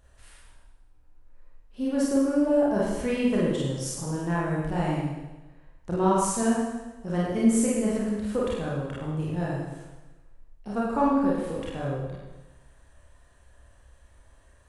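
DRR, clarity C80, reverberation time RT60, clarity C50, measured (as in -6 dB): -6.5 dB, 2.0 dB, 1.1 s, -1.5 dB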